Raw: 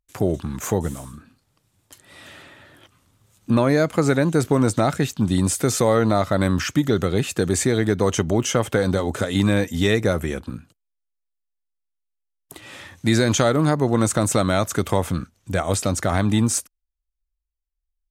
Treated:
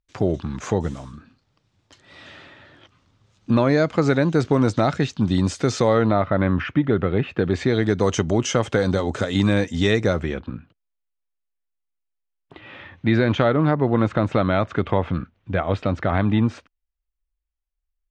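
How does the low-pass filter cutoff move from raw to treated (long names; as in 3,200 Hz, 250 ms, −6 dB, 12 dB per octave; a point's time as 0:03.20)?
low-pass filter 24 dB per octave
0:05.84 5,600 Hz
0:06.24 2,700 Hz
0:07.31 2,700 Hz
0:07.97 6,600 Hz
0:10.05 6,600 Hz
0:10.55 3,100 Hz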